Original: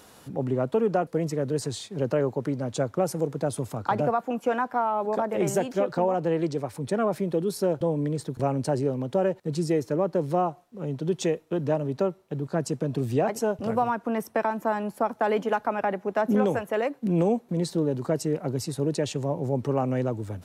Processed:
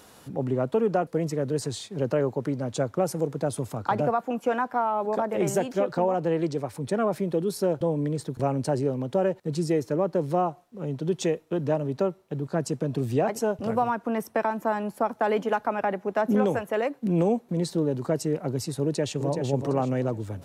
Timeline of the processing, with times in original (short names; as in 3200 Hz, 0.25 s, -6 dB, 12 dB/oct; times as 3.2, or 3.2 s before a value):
18.82–19.42 echo throw 0.38 s, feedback 30%, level -6.5 dB